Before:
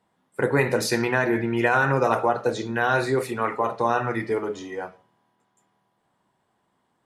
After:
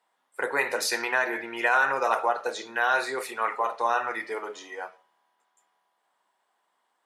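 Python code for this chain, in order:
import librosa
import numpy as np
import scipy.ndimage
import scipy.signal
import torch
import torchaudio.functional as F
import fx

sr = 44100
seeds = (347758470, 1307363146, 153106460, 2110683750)

y = scipy.signal.sosfilt(scipy.signal.butter(2, 700.0, 'highpass', fs=sr, output='sos'), x)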